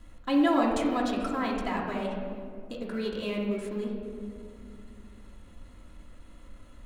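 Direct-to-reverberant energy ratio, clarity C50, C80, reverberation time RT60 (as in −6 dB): −3.5 dB, 2.0 dB, 3.5 dB, 2.3 s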